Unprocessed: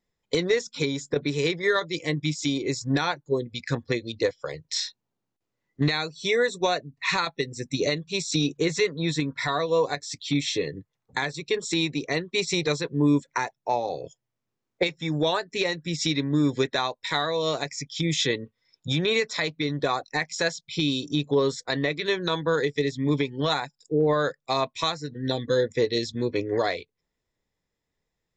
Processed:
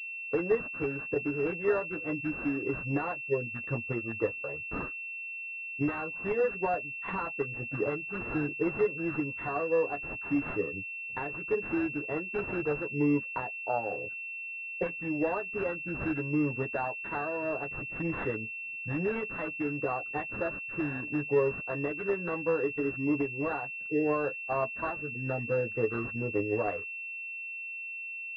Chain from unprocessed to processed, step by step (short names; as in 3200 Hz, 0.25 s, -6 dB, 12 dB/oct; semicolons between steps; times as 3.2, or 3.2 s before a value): flange 0.24 Hz, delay 9 ms, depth 1.1 ms, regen -2%; pulse-width modulation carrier 2700 Hz; gain -2 dB